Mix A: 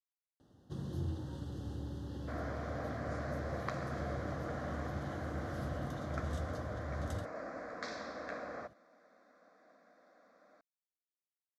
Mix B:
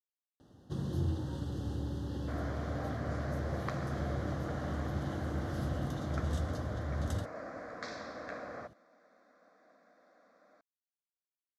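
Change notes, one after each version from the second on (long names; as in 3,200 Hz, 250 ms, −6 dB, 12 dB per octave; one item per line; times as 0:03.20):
first sound +5.0 dB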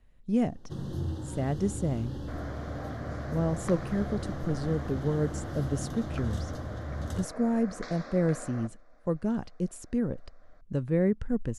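speech: unmuted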